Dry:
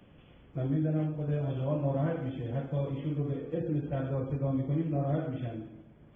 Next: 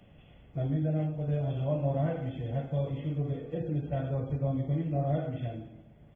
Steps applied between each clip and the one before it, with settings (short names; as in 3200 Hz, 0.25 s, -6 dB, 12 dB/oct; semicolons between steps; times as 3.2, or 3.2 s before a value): bell 1300 Hz -9.5 dB 0.25 oct; notch 520 Hz, Q 17; comb 1.5 ms, depth 39%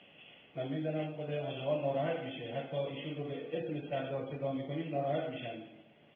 HPF 290 Hz 12 dB/oct; companded quantiser 8-bit; synth low-pass 2900 Hz, resonance Q 4.5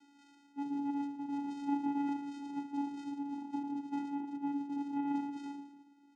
vocoder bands 4, square 283 Hz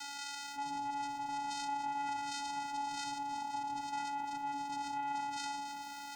EQ curve 110 Hz 0 dB, 330 Hz -25 dB, 920 Hz +3 dB, 3000 Hz +3 dB, 4400 Hz +9 dB; fast leveller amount 70%; gain +1 dB